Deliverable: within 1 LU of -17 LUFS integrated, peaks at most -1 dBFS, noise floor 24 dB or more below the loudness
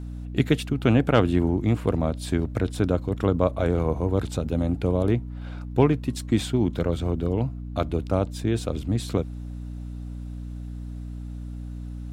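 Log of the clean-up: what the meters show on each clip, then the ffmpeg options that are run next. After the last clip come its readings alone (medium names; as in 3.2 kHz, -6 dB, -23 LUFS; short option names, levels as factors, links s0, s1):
hum 60 Hz; highest harmonic 300 Hz; hum level -32 dBFS; loudness -25.0 LUFS; peak level -4.5 dBFS; loudness target -17.0 LUFS
-> -af "bandreject=f=60:t=h:w=6,bandreject=f=120:t=h:w=6,bandreject=f=180:t=h:w=6,bandreject=f=240:t=h:w=6,bandreject=f=300:t=h:w=6"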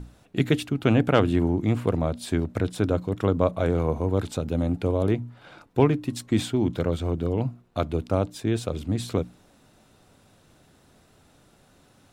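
hum not found; loudness -25.5 LUFS; peak level -4.5 dBFS; loudness target -17.0 LUFS
-> -af "volume=2.66,alimiter=limit=0.891:level=0:latency=1"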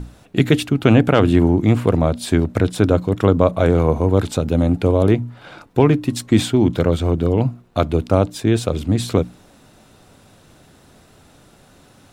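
loudness -17.5 LUFS; peak level -1.0 dBFS; noise floor -50 dBFS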